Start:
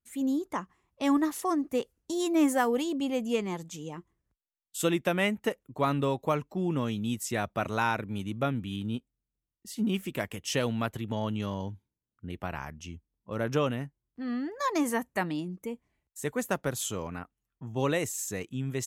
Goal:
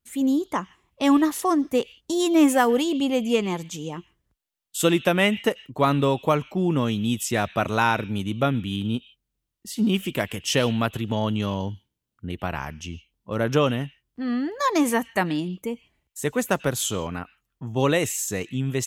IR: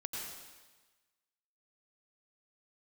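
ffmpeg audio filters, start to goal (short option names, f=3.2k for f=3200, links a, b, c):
-filter_complex "[0:a]asplit=2[a][b];[b]highpass=f=2.9k:t=q:w=2.8[c];[1:a]atrim=start_sample=2205,afade=t=out:st=0.22:d=0.01,atrim=end_sample=10143,lowpass=4.6k[d];[c][d]afir=irnorm=-1:irlink=0,volume=-14dB[e];[a][e]amix=inputs=2:normalize=0,volume=7dB"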